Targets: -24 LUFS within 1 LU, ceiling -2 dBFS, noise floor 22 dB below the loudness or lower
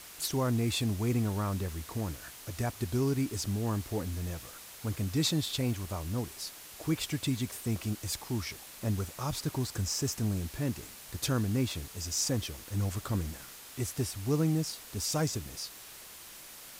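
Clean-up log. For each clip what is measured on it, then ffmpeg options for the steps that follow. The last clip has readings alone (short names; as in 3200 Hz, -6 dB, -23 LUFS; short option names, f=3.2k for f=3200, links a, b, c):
noise floor -49 dBFS; noise floor target -55 dBFS; loudness -33.0 LUFS; peak -17.5 dBFS; loudness target -24.0 LUFS
-> -af "afftdn=nr=6:nf=-49"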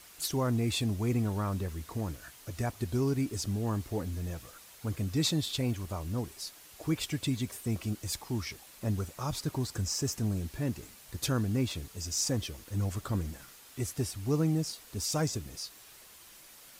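noise floor -54 dBFS; noise floor target -56 dBFS
-> -af "afftdn=nr=6:nf=-54"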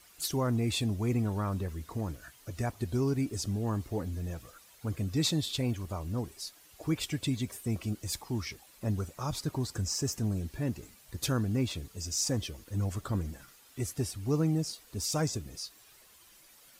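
noise floor -59 dBFS; loudness -33.5 LUFS; peak -17.5 dBFS; loudness target -24.0 LUFS
-> -af "volume=9.5dB"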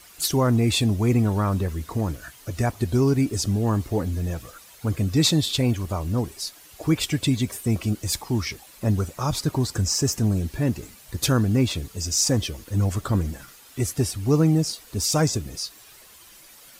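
loudness -24.0 LUFS; peak -8.0 dBFS; noise floor -49 dBFS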